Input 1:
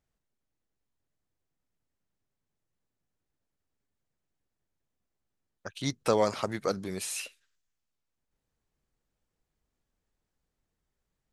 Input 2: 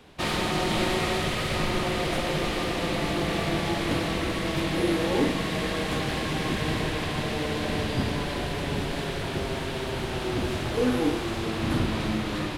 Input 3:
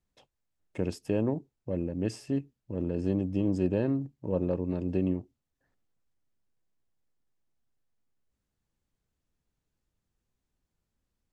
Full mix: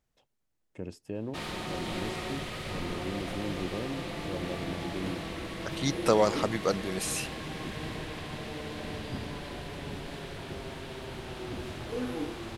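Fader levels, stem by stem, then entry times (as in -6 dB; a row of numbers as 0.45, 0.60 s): +2.0, -10.0, -8.5 dB; 0.00, 1.15, 0.00 s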